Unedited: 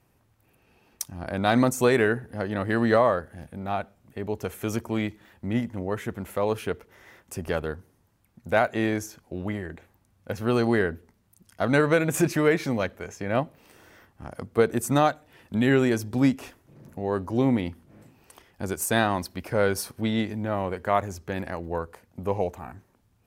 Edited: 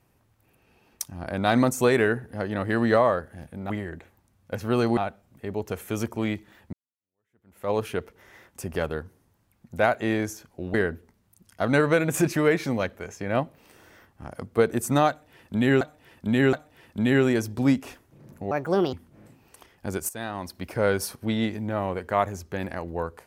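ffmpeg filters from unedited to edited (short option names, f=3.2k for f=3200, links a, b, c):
-filter_complex "[0:a]asplit=10[a][b][c][d][e][f][g][h][i][j];[a]atrim=end=3.702[k];[b]atrim=start=9.468:end=10.742[l];[c]atrim=start=3.698:end=5.46,asetpts=PTS-STARTPTS,afade=t=out:st=1.758:d=0.004:c=hsin[m];[d]atrim=start=5.46:end=9.472,asetpts=PTS-STARTPTS,afade=t=in:d=0.97:c=exp[n];[e]atrim=start=10.738:end=15.812[o];[f]atrim=start=15.088:end=15.812[p];[g]atrim=start=15.088:end=17.074[q];[h]atrim=start=17.07:end=17.69,asetpts=PTS-STARTPTS,asetrate=64827,aresample=44100[r];[i]atrim=start=17.686:end=18.85,asetpts=PTS-STARTPTS,afade=t=out:st=1.16:d=0.004:c=hsin:silence=0.211349[s];[j]atrim=start=18.85,asetpts=PTS-STARTPTS,afade=t=in:d=0.55:c=qua:silence=0.211349[t];[k][l]acrossfade=d=0.004:c1=hsin:c2=hsin[u];[m][n]concat=n=2:v=0:a=1[v];[u][v]acrossfade=d=0.004:c1=hsin:c2=hsin[w];[w][o]acrossfade=d=0.004:c1=hsin:c2=hsin[x];[x][p]acrossfade=d=0.004:c1=hsin:c2=hsin[y];[y][q]acrossfade=d=0.004:c1=hsin:c2=hsin[z];[z][r]acrossfade=d=0.004:c1=hsin:c2=hsin[aa];[s][t]concat=n=2:v=0:a=1[ab];[aa][ab]acrossfade=d=0.004:c1=hsin:c2=hsin"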